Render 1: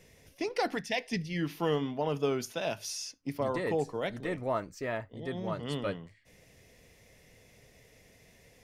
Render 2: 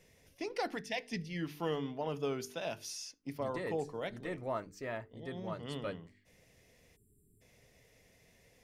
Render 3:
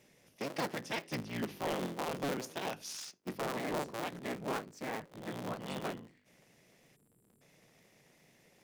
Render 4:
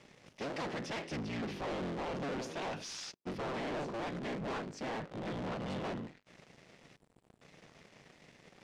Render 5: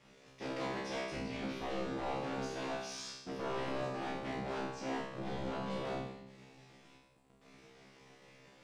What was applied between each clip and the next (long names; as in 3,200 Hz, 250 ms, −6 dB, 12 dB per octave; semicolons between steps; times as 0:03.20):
time-frequency box erased 0:06.96–0:07.41, 440–7,200 Hz; hum removal 49.18 Hz, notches 9; level −5.5 dB
sub-harmonics by changed cycles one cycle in 3, inverted; low shelf with overshoot 100 Hz −12.5 dB, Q 1.5; wave folding −27.5 dBFS
leveller curve on the samples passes 5; reversed playback; upward compression, threshold −48 dBFS; reversed playback; high-frequency loss of the air 100 metres; level −7.5 dB
tuned comb filter 66 Hz, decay 0.74 s, harmonics all, mix 100%; on a send at −8 dB: convolution reverb RT60 0.80 s, pre-delay 6 ms; on the sum: level +10.5 dB